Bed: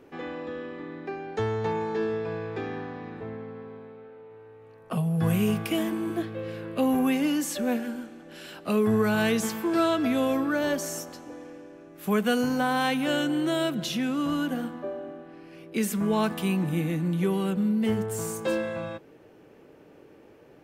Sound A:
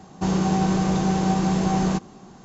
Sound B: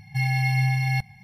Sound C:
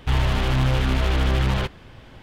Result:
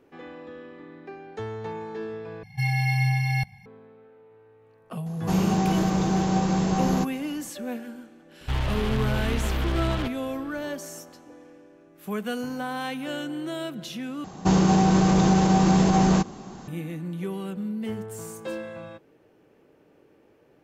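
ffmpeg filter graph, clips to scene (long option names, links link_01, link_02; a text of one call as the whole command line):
ffmpeg -i bed.wav -i cue0.wav -i cue1.wav -i cue2.wav -filter_complex "[1:a]asplit=2[link_01][link_02];[0:a]volume=-6dB[link_03];[link_02]alimiter=level_in=14.5dB:limit=-1dB:release=50:level=0:latency=1[link_04];[link_03]asplit=3[link_05][link_06][link_07];[link_05]atrim=end=2.434[link_08];[2:a]atrim=end=1.23,asetpts=PTS-STARTPTS,volume=-1dB[link_09];[link_06]atrim=start=3.656:end=14.244[link_10];[link_04]atrim=end=2.44,asetpts=PTS-STARTPTS,volume=-10dB[link_11];[link_07]atrim=start=16.676[link_12];[link_01]atrim=end=2.44,asetpts=PTS-STARTPTS,volume=-2dB,afade=type=in:duration=0.004:curve=hsin,afade=type=out:start_time=2.436:duration=0.004:curve=hsin,adelay=5060[link_13];[3:a]atrim=end=2.22,asetpts=PTS-STARTPTS,volume=-6dB,afade=type=in:duration=0.004:curve=hsin,afade=type=out:start_time=2.216:duration=0.004:curve=hsin,adelay=8410[link_14];[link_08][link_09]acrossfade=duration=0.004:curve1=hsin:curve2=hsin[link_15];[link_15][link_10]acrossfade=duration=0.004:curve1=hsin:curve2=hsin[link_16];[link_16][link_11]acrossfade=duration=0.004:curve1=hsin:curve2=hsin[link_17];[link_17][link_12]acrossfade=duration=0.004:curve1=hsin:curve2=hsin[link_18];[link_18][link_13][link_14]amix=inputs=3:normalize=0" out.wav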